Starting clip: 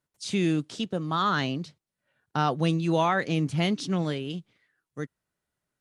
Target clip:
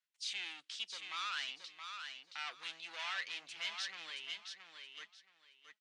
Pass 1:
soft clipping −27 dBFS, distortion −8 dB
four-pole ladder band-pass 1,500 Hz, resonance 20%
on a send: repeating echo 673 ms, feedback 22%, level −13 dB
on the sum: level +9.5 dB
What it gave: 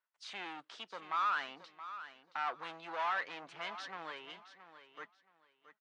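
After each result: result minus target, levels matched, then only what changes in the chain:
4,000 Hz band −10.5 dB; echo-to-direct −6.5 dB
change: four-pole ladder band-pass 3,200 Hz, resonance 20%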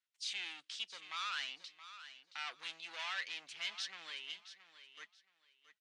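echo-to-direct −6.5 dB
change: repeating echo 673 ms, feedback 22%, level −6.5 dB

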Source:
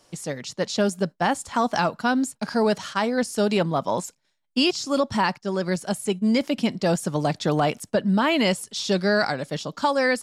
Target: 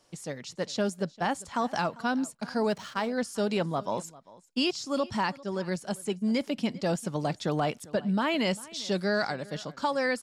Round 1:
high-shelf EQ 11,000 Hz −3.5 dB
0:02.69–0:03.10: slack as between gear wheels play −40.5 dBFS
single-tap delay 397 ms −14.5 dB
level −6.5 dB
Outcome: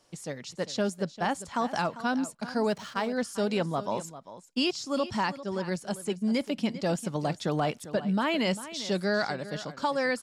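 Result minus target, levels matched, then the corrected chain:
echo-to-direct +6.5 dB
high-shelf EQ 11,000 Hz −3.5 dB
0:02.69–0:03.10: slack as between gear wheels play −40.5 dBFS
single-tap delay 397 ms −21 dB
level −6.5 dB

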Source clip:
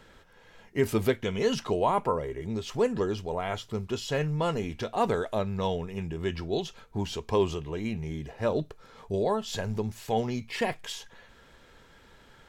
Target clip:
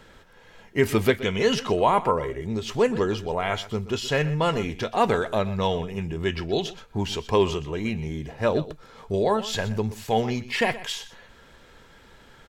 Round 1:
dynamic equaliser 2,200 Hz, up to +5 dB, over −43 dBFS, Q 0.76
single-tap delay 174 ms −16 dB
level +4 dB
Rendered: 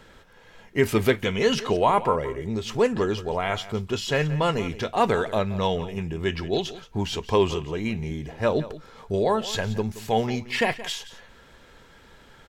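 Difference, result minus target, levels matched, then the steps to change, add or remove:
echo 50 ms late
change: single-tap delay 124 ms −16 dB

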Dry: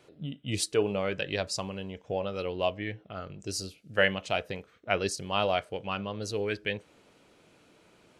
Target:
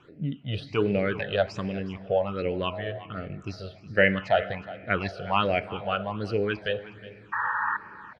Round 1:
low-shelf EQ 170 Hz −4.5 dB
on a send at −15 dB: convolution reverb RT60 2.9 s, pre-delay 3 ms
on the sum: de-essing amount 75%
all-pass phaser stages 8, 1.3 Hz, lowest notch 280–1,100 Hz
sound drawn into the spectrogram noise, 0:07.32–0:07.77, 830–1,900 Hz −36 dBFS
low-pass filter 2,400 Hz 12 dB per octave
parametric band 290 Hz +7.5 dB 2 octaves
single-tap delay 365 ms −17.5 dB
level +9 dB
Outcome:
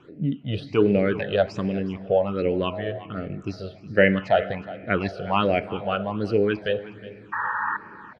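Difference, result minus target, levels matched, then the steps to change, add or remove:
250 Hz band +3.0 dB
remove: parametric band 290 Hz +7.5 dB 2 octaves

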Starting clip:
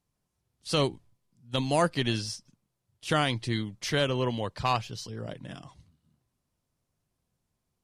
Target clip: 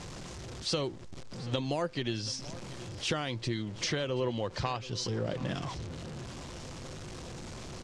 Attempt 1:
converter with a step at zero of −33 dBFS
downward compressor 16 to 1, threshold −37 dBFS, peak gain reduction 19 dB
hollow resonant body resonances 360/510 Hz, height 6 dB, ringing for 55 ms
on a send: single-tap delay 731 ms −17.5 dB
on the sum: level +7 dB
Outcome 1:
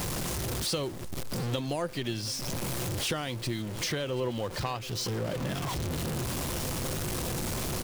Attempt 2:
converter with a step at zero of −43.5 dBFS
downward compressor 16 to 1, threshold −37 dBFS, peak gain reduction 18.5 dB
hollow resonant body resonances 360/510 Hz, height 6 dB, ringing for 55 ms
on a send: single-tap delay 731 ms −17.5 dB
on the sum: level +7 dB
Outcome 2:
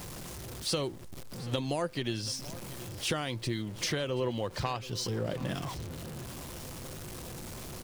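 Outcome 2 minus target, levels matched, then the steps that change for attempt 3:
8,000 Hz band +2.0 dB
add after downward compressor: low-pass filter 7,300 Hz 24 dB per octave

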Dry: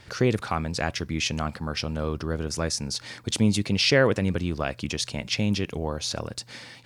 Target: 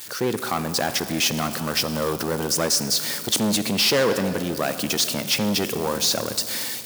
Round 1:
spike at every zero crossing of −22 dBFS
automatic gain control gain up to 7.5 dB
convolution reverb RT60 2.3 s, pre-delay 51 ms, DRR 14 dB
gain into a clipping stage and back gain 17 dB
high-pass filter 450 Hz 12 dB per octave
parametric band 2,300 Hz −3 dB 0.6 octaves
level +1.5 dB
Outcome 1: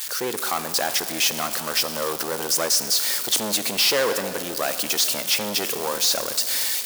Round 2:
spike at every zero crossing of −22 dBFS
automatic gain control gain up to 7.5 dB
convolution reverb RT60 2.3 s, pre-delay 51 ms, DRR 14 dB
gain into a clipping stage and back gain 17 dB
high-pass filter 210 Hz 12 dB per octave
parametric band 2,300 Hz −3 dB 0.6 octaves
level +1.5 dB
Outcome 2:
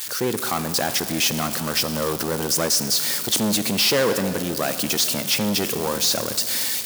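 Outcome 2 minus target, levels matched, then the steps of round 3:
spike at every zero crossing: distortion +7 dB
spike at every zero crossing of −29.5 dBFS
automatic gain control gain up to 7.5 dB
convolution reverb RT60 2.3 s, pre-delay 51 ms, DRR 14 dB
gain into a clipping stage and back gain 17 dB
high-pass filter 210 Hz 12 dB per octave
parametric band 2,300 Hz −3 dB 0.6 octaves
level +1.5 dB

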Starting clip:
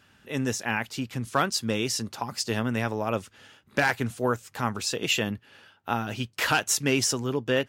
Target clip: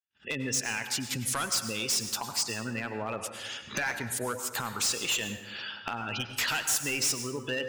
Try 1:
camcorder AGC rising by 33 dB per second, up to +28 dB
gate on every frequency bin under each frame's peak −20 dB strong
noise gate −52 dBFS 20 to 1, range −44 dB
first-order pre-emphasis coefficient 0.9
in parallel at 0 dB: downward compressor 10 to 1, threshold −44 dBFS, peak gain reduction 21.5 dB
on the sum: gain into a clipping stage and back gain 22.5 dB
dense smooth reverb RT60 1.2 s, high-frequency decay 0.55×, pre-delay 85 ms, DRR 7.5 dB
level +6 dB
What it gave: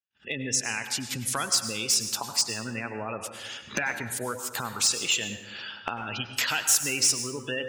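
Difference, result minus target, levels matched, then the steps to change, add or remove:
gain into a clipping stage and back: distortion −9 dB
change: gain into a clipping stage and back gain 31 dB

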